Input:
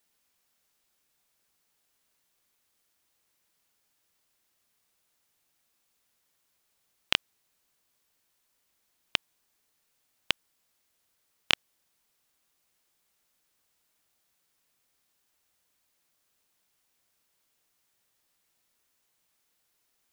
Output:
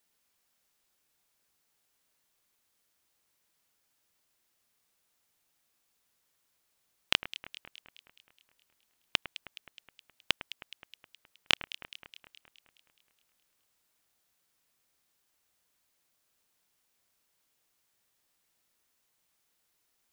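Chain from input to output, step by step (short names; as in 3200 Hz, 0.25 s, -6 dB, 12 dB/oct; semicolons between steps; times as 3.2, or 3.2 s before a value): echo with dull and thin repeats by turns 0.105 s, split 2300 Hz, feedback 75%, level -12 dB; gain -1.5 dB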